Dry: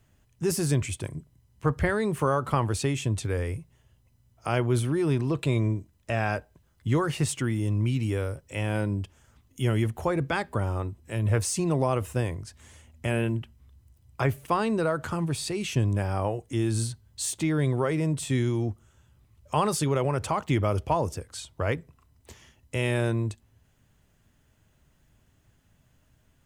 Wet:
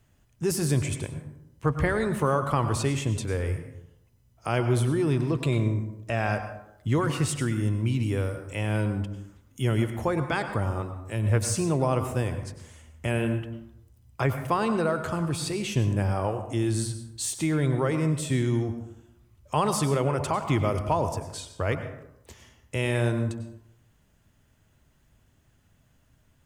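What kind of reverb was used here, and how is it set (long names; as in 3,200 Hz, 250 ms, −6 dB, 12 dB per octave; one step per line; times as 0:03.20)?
dense smooth reverb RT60 0.8 s, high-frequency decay 0.5×, pre-delay 85 ms, DRR 8 dB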